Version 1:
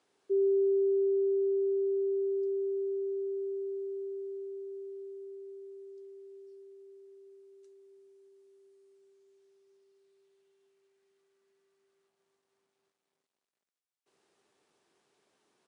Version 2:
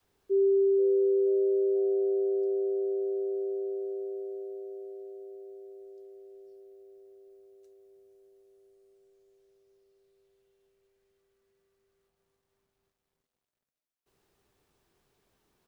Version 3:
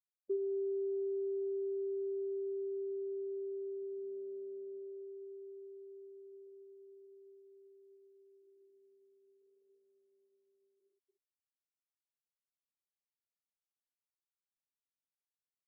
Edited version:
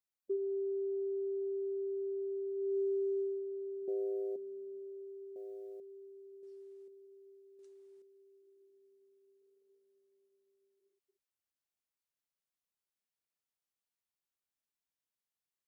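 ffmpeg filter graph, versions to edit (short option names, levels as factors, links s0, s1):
-filter_complex "[0:a]asplit=3[s0][s1][s2];[1:a]asplit=2[s3][s4];[2:a]asplit=6[s5][s6][s7][s8][s9][s10];[s5]atrim=end=2.78[s11];[s0]atrim=start=2.54:end=3.44[s12];[s6]atrim=start=3.2:end=3.882[s13];[s3]atrim=start=3.878:end=4.362[s14];[s7]atrim=start=4.358:end=5.362[s15];[s4]atrim=start=5.358:end=5.802[s16];[s8]atrim=start=5.798:end=6.432[s17];[s1]atrim=start=6.428:end=6.882[s18];[s9]atrim=start=6.878:end=7.592[s19];[s2]atrim=start=7.588:end=8.022[s20];[s10]atrim=start=8.018[s21];[s11][s12]acrossfade=d=0.24:c1=tri:c2=tri[s22];[s22][s13]acrossfade=d=0.24:c1=tri:c2=tri[s23];[s23][s14]acrossfade=d=0.004:c1=hsin:c2=hsin[s24];[s24][s15]acrossfade=d=0.004:c1=hsin:c2=hsin[s25];[s25][s16]acrossfade=d=0.004:c1=hsin:c2=hsin[s26];[s26][s17]acrossfade=d=0.004:c1=hsin:c2=hsin[s27];[s27][s18]acrossfade=d=0.004:c1=hsin:c2=hsin[s28];[s28][s19]acrossfade=d=0.004:c1=hsin:c2=hsin[s29];[s29][s20]acrossfade=d=0.004:c1=hsin:c2=hsin[s30];[s30][s21]acrossfade=d=0.004:c1=hsin:c2=hsin"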